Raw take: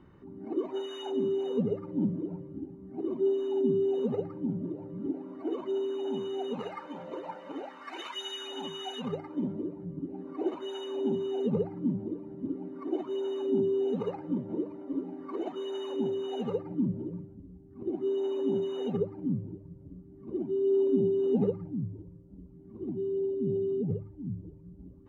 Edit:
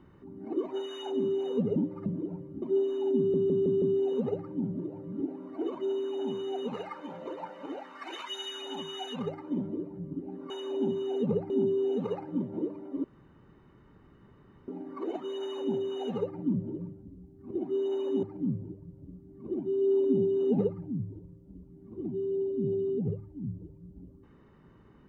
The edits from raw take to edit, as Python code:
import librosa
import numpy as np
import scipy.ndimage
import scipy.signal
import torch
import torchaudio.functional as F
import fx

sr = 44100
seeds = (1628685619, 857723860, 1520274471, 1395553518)

y = fx.edit(x, sr, fx.reverse_span(start_s=1.76, length_s=0.3),
    fx.cut(start_s=2.62, length_s=0.5),
    fx.stutter(start_s=3.68, slice_s=0.16, count=5),
    fx.cut(start_s=10.36, length_s=0.38),
    fx.cut(start_s=11.74, length_s=1.72),
    fx.insert_room_tone(at_s=15.0, length_s=1.64),
    fx.cut(start_s=18.55, length_s=0.51), tone=tone)